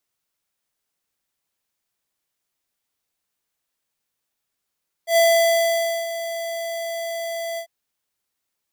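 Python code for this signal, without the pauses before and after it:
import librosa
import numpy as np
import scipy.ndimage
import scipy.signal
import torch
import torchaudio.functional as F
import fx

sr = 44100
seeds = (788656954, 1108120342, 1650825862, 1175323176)

y = fx.adsr_tone(sr, wave='square', hz=669.0, attack_ms=100.0, decay_ms=894.0, sustain_db=-13.5, held_s=2.51, release_ms=85.0, level_db=-14.5)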